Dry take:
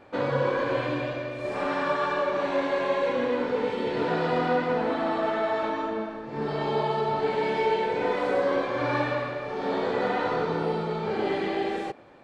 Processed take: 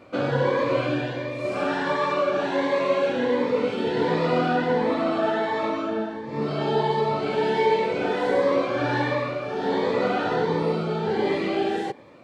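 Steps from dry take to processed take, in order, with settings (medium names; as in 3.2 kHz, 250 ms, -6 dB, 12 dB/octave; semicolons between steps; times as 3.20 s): high-pass 78 Hz; Shepard-style phaser rising 1.4 Hz; trim +5 dB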